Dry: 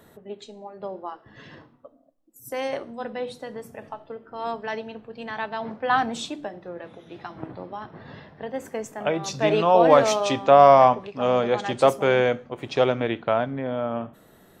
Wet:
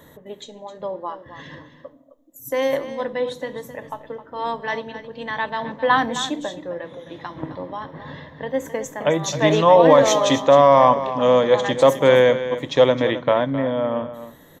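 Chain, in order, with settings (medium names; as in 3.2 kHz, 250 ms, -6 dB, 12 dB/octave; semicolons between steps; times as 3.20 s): rippled EQ curve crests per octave 1.1, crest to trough 9 dB; peak limiter -7 dBFS, peak gain reduction 6.5 dB; on a send: delay 263 ms -12.5 dB; on the sum: trim +4 dB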